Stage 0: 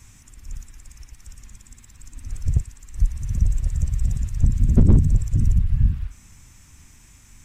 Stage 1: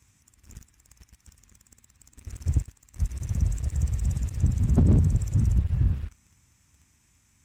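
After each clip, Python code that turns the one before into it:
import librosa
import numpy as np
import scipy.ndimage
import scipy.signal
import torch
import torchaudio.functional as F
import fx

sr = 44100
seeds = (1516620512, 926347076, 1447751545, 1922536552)

y = scipy.signal.sosfilt(scipy.signal.butter(4, 54.0, 'highpass', fs=sr, output='sos'), x)
y = fx.leveller(y, sr, passes=2)
y = y * 10.0 ** (-8.5 / 20.0)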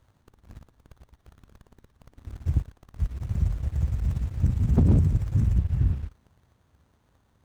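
y = fx.running_max(x, sr, window=17)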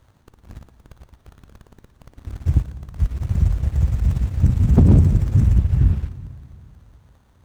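y = fx.rev_plate(x, sr, seeds[0], rt60_s=2.7, hf_ratio=0.9, predelay_ms=0, drr_db=12.5)
y = y * 10.0 ** (7.0 / 20.0)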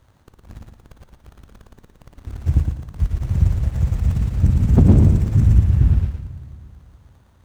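y = fx.echo_feedback(x, sr, ms=112, feedback_pct=29, wet_db=-5.0)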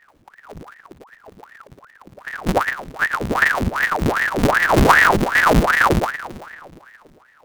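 y = fx.halfwave_hold(x, sr)
y = fx.ring_lfo(y, sr, carrier_hz=980.0, swing_pct=90, hz=2.6)
y = y * 10.0 ** (-2.0 / 20.0)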